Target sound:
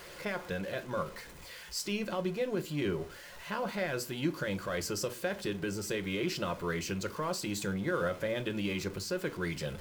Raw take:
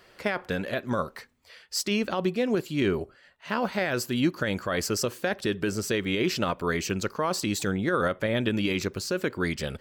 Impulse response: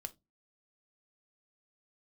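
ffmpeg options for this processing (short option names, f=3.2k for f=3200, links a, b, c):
-filter_complex "[0:a]aeval=exprs='val(0)+0.5*0.0168*sgn(val(0))':c=same[a];[1:a]atrim=start_sample=2205[b];[a][b]afir=irnorm=-1:irlink=0,volume=-5dB"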